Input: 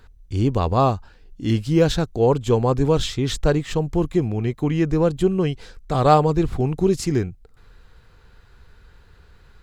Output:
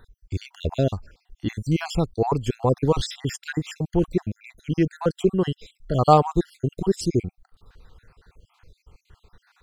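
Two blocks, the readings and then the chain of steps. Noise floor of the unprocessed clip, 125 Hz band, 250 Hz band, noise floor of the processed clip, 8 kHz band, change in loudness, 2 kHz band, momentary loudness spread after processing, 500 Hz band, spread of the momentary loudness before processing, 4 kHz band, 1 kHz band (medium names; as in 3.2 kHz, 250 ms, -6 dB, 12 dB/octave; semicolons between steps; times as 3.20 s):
-52 dBFS, -4.0 dB, -4.0 dB, -74 dBFS, -4.0 dB, -3.5 dB, -3.0 dB, 14 LU, -4.0 dB, 7 LU, -4.5 dB, -2.0 dB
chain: random holes in the spectrogram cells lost 57%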